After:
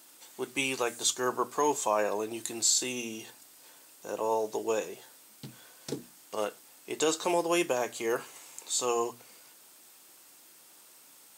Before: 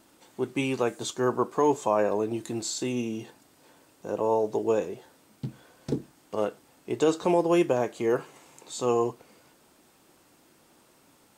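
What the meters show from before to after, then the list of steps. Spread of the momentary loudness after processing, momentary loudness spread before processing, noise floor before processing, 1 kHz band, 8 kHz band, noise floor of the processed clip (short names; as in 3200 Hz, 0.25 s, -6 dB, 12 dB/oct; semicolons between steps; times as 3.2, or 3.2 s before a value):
20 LU, 15 LU, -61 dBFS, -2.0 dB, +8.5 dB, -56 dBFS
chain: tilt +3.5 dB/oct; notches 60/120/180/240 Hz; gain -1.5 dB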